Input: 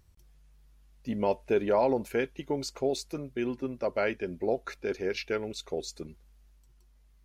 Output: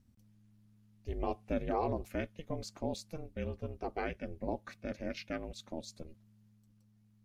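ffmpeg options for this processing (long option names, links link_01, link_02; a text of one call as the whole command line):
ffmpeg -i in.wav -af "aeval=exprs='val(0)*sin(2*PI*160*n/s)':channel_layout=same,lowshelf=frequency=96:gain=9,volume=-6dB" out.wav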